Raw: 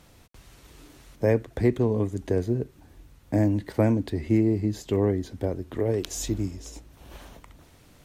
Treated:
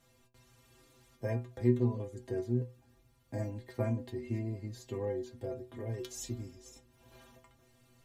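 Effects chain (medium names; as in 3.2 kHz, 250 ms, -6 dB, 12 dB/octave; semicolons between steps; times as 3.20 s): inharmonic resonator 120 Hz, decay 0.33 s, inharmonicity 0.008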